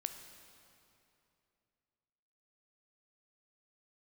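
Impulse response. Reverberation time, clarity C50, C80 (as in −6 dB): 2.8 s, 8.0 dB, 9.0 dB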